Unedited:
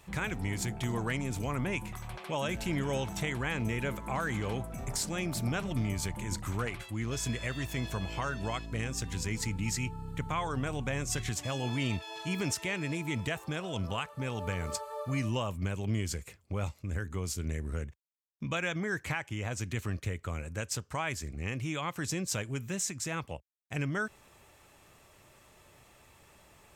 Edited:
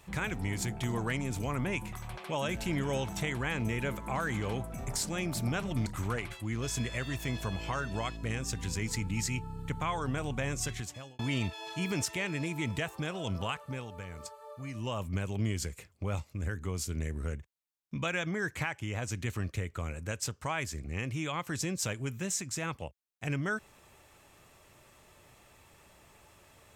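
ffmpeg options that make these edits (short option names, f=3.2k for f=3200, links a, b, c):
-filter_complex "[0:a]asplit=5[a][b][c][d][e];[a]atrim=end=5.862[f];[b]atrim=start=6.348:end=11.68,asetpts=PTS-STARTPTS,afade=t=out:st=4.702:d=0.63[g];[c]atrim=start=11.68:end=14.39,asetpts=PTS-STARTPTS,afade=t=in:d=0.004:c=hsin,afade=t=out:st=2.43:d=0.28:silence=0.354813[h];[d]atrim=start=14.39:end=15.23,asetpts=PTS-STARTPTS,volume=-9dB[i];[e]atrim=start=15.23,asetpts=PTS-STARTPTS,afade=t=in:d=0.28:silence=0.354813[j];[g][h][i][j]concat=n=4:v=0:a=1[k];[f][k]acrossfade=d=0.004:c1=hsin:c2=hsin"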